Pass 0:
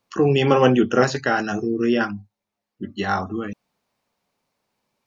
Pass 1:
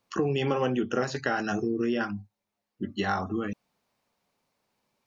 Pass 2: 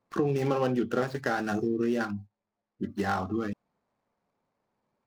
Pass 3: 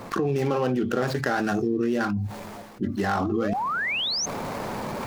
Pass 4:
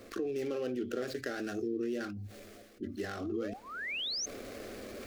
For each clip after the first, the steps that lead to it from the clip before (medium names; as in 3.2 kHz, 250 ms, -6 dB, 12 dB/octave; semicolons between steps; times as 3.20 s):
compression 4:1, threshold -23 dBFS, peak gain reduction 11.5 dB; trim -1.5 dB
median filter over 15 samples
reverse; upward compressor, threshold -30 dBFS; reverse; painted sound rise, 3.20–4.26 s, 260–6500 Hz -36 dBFS; level flattener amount 70%
static phaser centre 380 Hz, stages 4; trim -8.5 dB